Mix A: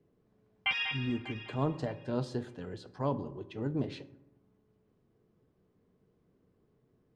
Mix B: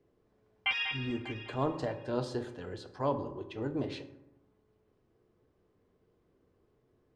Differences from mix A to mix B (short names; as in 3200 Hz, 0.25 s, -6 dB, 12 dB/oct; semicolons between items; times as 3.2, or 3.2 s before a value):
speech: send +7.5 dB; master: add bell 170 Hz -9.5 dB 1.1 oct